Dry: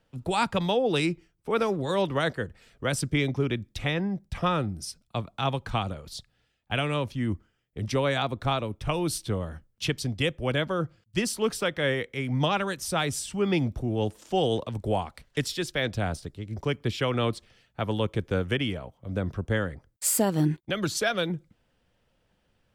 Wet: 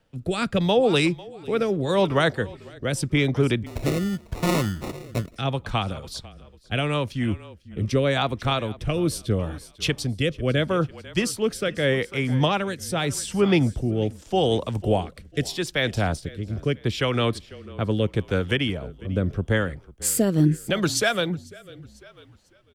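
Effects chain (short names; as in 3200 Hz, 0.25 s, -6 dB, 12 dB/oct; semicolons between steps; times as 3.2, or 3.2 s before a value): frequency-shifting echo 0.497 s, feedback 38%, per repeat -30 Hz, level -19 dB; 3.66–5.36 sample-rate reducer 1600 Hz, jitter 0%; rotary speaker horn 0.8 Hz; gain +6 dB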